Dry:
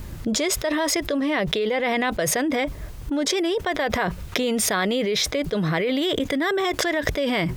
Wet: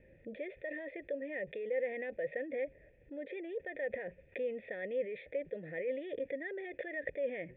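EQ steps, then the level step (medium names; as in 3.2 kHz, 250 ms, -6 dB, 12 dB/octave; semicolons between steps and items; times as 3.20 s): cascade formant filter e; bass shelf 140 Hz -9.5 dB; static phaser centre 2.7 kHz, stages 4; -3.0 dB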